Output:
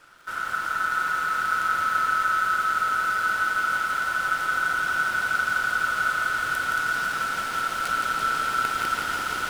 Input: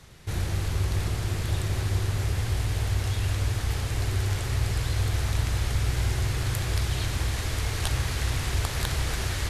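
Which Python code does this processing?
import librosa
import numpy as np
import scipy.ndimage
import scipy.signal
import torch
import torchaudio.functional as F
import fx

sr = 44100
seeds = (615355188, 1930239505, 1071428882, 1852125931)

p1 = fx.sample_hold(x, sr, seeds[0], rate_hz=7400.0, jitter_pct=0)
p2 = x + (p1 * 10.0 ** (-5.0 / 20.0))
p3 = fx.peak_eq(p2, sr, hz=130.0, db=-3.0, octaves=0.77)
p4 = p3 + fx.echo_split(p3, sr, split_hz=720.0, low_ms=317, high_ms=495, feedback_pct=52, wet_db=-12.5, dry=0)
p5 = p4 * np.sin(2.0 * np.pi * 1400.0 * np.arange(len(p4)) / sr)
p6 = fx.echo_crushed(p5, sr, ms=169, feedback_pct=80, bits=8, wet_db=-4)
y = p6 * 10.0 ** (-3.0 / 20.0)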